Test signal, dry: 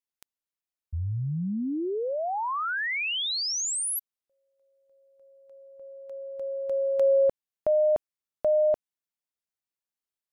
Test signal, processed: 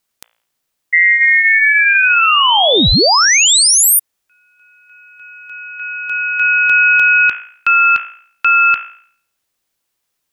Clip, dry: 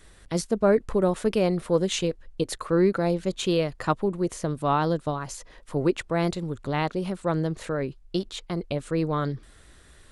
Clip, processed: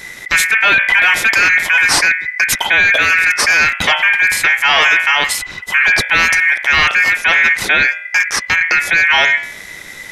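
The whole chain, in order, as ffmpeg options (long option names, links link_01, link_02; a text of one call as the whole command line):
ffmpeg -i in.wav -af "bandreject=frequency=57.31:width_type=h:width=4,bandreject=frequency=114.62:width_type=h:width=4,bandreject=frequency=171.93:width_type=h:width=4,bandreject=frequency=229.24:width_type=h:width=4,bandreject=frequency=286.55:width_type=h:width=4,bandreject=frequency=343.86:width_type=h:width=4,bandreject=frequency=401.17:width_type=h:width=4,bandreject=frequency=458.48:width_type=h:width=4,bandreject=frequency=515.79:width_type=h:width=4,bandreject=frequency=573.1:width_type=h:width=4,bandreject=frequency=630.41:width_type=h:width=4,bandreject=frequency=687.72:width_type=h:width=4,bandreject=frequency=745.03:width_type=h:width=4,bandreject=frequency=802.34:width_type=h:width=4,bandreject=frequency=859.65:width_type=h:width=4,bandreject=frequency=916.96:width_type=h:width=4,bandreject=frequency=974.27:width_type=h:width=4,bandreject=frequency=1031.58:width_type=h:width=4,bandreject=frequency=1088.89:width_type=h:width=4,bandreject=frequency=1146.2:width_type=h:width=4,bandreject=frequency=1203.51:width_type=h:width=4,bandreject=frequency=1260.82:width_type=h:width=4,bandreject=frequency=1318.13:width_type=h:width=4,bandreject=frequency=1375.44:width_type=h:width=4,bandreject=frequency=1432.75:width_type=h:width=4,bandreject=frequency=1490.06:width_type=h:width=4,apsyclip=27dB,aeval=exprs='val(0)*sin(2*PI*2000*n/s)':channel_layout=same,volume=-4dB" out.wav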